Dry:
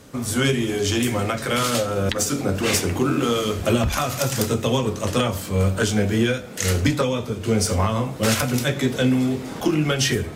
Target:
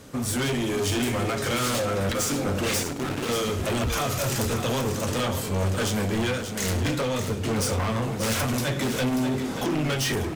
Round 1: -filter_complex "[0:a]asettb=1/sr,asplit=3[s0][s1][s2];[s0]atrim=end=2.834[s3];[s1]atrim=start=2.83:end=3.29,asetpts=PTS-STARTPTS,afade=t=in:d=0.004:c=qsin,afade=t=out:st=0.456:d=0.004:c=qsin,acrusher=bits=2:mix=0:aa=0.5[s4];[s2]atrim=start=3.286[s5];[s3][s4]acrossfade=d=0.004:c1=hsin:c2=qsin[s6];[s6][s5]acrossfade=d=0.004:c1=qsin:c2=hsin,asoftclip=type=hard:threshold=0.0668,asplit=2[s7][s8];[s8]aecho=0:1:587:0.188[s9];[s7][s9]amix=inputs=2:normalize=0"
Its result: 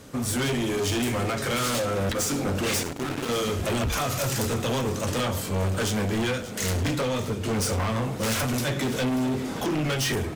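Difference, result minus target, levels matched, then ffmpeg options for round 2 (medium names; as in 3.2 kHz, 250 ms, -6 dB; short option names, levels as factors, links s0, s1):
echo-to-direct -6.5 dB
-filter_complex "[0:a]asettb=1/sr,asplit=3[s0][s1][s2];[s0]atrim=end=2.834[s3];[s1]atrim=start=2.83:end=3.29,asetpts=PTS-STARTPTS,afade=t=in:d=0.004:c=qsin,afade=t=out:st=0.456:d=0.004:c=qsin,acrusher=bits=2:mix=0:aa=0.5[s4];[s2]atrim=start=3.286[s5];[s3][s4]acrossfade=d=0.004:c1=hsin:c2=qsin[s6];[s6][s5]acrossfade=d=0.004:c1=qsin:c2=hsin,asoftclip=type=hard:threshold=0.0668,asplit=2[s7][s8];[s8]aecho=0:1:587:0.398[s9];[s7][s9]amix=inputs=2:normalize=0"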